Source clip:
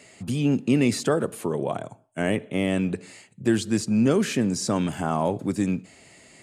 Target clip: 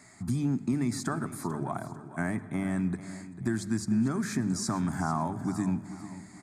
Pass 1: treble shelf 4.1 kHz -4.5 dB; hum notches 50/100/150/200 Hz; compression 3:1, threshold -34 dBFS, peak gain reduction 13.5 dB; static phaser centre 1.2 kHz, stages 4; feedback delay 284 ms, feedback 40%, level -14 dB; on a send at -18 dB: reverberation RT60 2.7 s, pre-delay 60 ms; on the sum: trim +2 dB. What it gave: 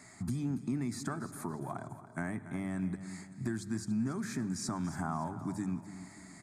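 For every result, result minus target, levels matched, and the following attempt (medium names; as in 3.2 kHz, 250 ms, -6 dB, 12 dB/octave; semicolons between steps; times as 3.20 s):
echo 160 ms early; compression: peak gain reduction +6.5 dB
treble shelf 4.1 kHz -4.5 dB; hum notches 50/100/150/200 Hz; compression 3:1, threshold -34 dBFS, peak gain reduction 13.5 dB; static phaser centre 1.2 kHz, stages 4; feedback delay 444 ms, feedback 40%, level -14 dB; on a send at -18 dB: reverberation RT60 2.7 s, pre-delay 60 ms; on the sum: trim +2 dB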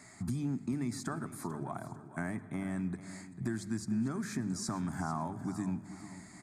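compression: peak gain reduction +6.5 dB
treble shelf 4.1 kHz -4.5 dB; hum notches 50/100/150/200 Hz; compression 3:1, threshold -24.5 dBFS, peak gain reduction 7.5 dB; static phaser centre 1.2 kHz, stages 4; feedback delay 444 ms, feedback 40%, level -14 dB; on a send at -18 dB: reverberation RT60 2.7 s, pre-delay 60 ms; on the sum: trim +2 dB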